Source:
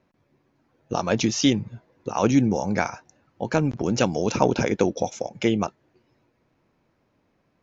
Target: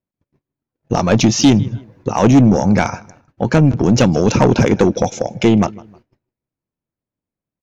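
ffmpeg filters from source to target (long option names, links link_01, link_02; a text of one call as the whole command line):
ffmpeg -i in.wav -filter_complex "[0:a]lowshelf=frequency=270:gain=9,agate=range=-33dB:threshold=-56dB:ratio=16:detection=peak,asplit=2[link_01][link_02];[link_02]adelay=156,lowpass=frequency=4400:poles=1,volume=-23.5dB,asplit=2[link_03][link_04];[link_04]adelay=156,lowpass=frequency=4400:poles=1,volume=0.32[link_05];[link_03][link_05]amix=inputs=2:normalize=0[link_06];[link_01][link_06]amix=inputs=2:normalize=0,asoftclip=type=tanh:threshold=-12.5dB,volume=8.5dB" out.wav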